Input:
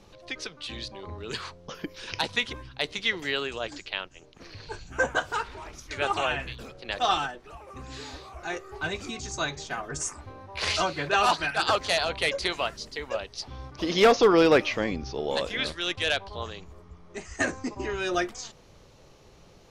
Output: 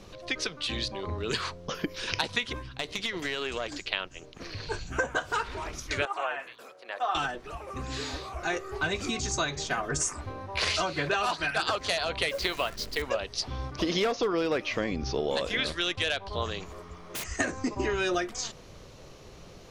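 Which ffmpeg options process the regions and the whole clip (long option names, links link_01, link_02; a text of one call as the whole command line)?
ffmpeg -i in.wav -filter_complex "[0:a]asettb=1/sr,asplit=3[link_01][link_02][link_03];[link_01]atrim=end=2.594[link_04];[link_02]atrim=start=2.59:end=3.87,asetpts=PTS-STARTPTS,afade=type=in:duration=0.004:curve=qsin,afade=type=out:start_time=1.276:duration=0.004:curve=qsin,acompressor=threshold=-29dB:ratio=10:attack=3.2:release=140:knee=1:detection=peak,aeval=exprs='(tanh(15.8*val(0)+0.55)-tanh(0.55))/15.8':channel_layout=same[link_05];[link_03]atrim=start=3.866[link_06];[link_04][link_05]acrossfade=duration=0.004:curve1=hsin:curve2=qsin[link_07];[link_07][link_06]acrossfade=duration=0.004:curve1=qsin:curve2=hsin,asettb=1/sr,asplit=3[link_08][link_09][link_10];[link_08]atrim=end=6.054[link_11];[link_09]atrim=start=6.05:end=7.15,asetpts=PTS-STARTPTS,afade=type=in:duration=0.004:curve=qsin,afade=type=out:start_time=1.096:duration=0.004:curve=qsin,highpass=810,acrossover=split=2600[link_12][link_13];[link_13]acompressor=threshold=-45dB:ratio=4:attack=1:release=60[link_14];[link_12][link_14]amix=inputs=2:normalize=0,equalizer=frequency=3900:width_type=o:width=2.9:gain=-11.5[link_15];[link_10]atrim=start=7.146[link_16];[link_11][link_15]acrossfade=duration=0.004:curve1=hsin:curve2=qsin[link_17];[link_17][link_16]acrossfade=duration=0.004:curve1=qsin:curve2=hsin,asettb=1/sr,asplit=3[link_18][link_19][link_20];[link_18]atrim=end=12.294[link_21];[link_19]atrim=start=12.29:end=13.02,asetpts=PTS-STARTPTS,afade=type=in:duration=0.004:curve=qsin,afade=type=out:start_time=0.726:duration=0.004:curve=qsin,lowpass=5900,asubboost=boost=8.5:cutoff=61,acrusher=bits=8:dc=4:mix=0:aa=0.000001[link_22];[link_20]atrim=start=13.016[link_23];[link_21][link_22]acrossfade=duration=0.004:curve1=hsin:curve2=qsin[link_24];[link_24][link_23]acrossfade=duration=0.004:curve1=qsin:curve2=hsin,asettb=1/sr,asplit=3[link_25][link_26][link_27];[link_25]atrim=end=16.604[link_28];[link_26]atrim=start=16.6:end=17.24,asetpts=PTS-STARTPTS,afade=type=in:duration=0.004:curve=qsin,afade=type=out:start_time=0.636:duration=0.004:curve=qsin,lowshelf=frequency=270:gain=-11.5,acontrast=52,aeval=exprs='(mod(53.1*val(0)+1,2)-1)/53.1':channel_layout=same[link_29];[link_27]atrim=start=17.236[link_30];[link_28][link_29]acrossfade=duration=0.004:curve1=hsin:curve2=qsin[link_31];[link_31][link_30]acrossfade=duration=0.004:curve1=qsin:curve2=hsin,bandreject=frequency=850:width=15,acompressor=threshold=-30dB:ratio=12,volume=5.5dB" out.wav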